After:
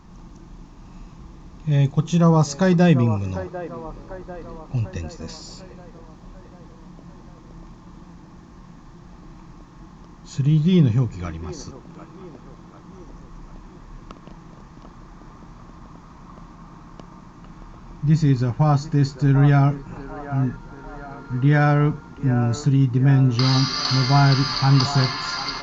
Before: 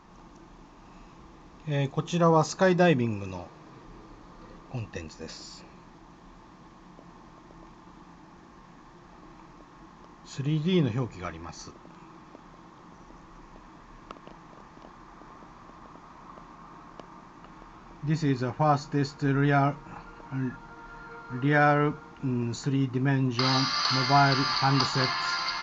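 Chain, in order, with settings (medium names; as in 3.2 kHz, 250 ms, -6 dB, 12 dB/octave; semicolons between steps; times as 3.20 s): tone controls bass +13 dB, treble +6 dB; on a send: feedback echo behind a band-pass 745 ms, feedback 54%, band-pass 750 Hz, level -9 dB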